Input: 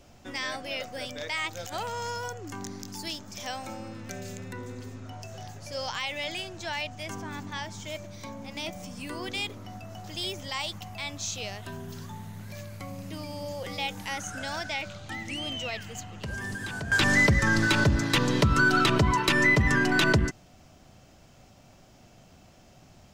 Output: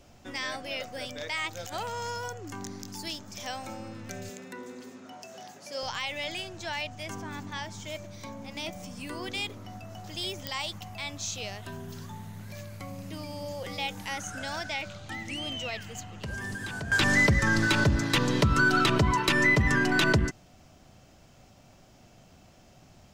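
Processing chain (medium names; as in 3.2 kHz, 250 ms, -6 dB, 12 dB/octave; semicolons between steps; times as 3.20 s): 4.29–5.83 s: high-pass 200 Hz 24 dB/octave; clicks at 10.47 s, -14 dBFS; trim -1 dB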